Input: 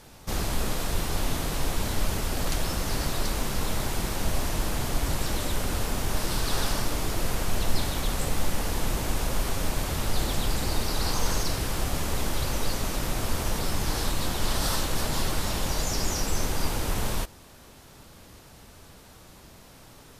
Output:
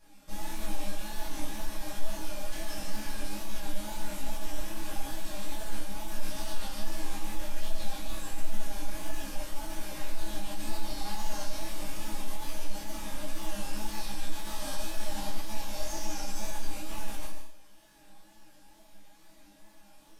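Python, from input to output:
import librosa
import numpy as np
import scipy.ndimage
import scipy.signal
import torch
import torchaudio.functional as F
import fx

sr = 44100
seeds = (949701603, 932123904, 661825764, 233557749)

p1 = fx.resonator_bank(x, sr, root=56, chord='sus4', decay_s=0.54)
p2 = fx.over_compress(p1, sr, threshold_db=-39.0, ratio=-1.0)
p3 = p1 + F.gain(torch.from_numpy(p2), -1.5).numpy()
p4 = p3 + 0.62 * np.pad(p3, (int(6.1 * sr / 1000.0), 0))[:len(p3)]
p5 = fx.wow_flutter(p4, sr, seeds[0], rate_hz=2.1, depth_cents=61.0)
p6 = p5 + fx.echo_single(p5, sr, ms=144, db=-7.5, dry=0)
p7 = fx.detune_double(p6, sr, cents=49)
y = F.gain(torch.from_numpy(p7), 6.0).numpy()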